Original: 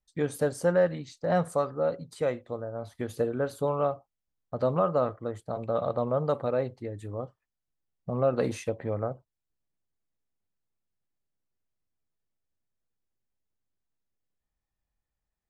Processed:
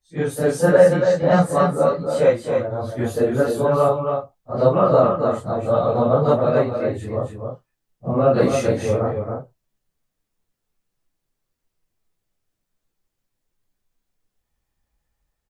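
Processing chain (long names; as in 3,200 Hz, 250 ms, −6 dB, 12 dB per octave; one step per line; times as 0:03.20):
random phases in long frames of 100 ms
automatic gain control gain up to 4 dB
single-tap delay 276 ms −5.5 dB
level +6 dB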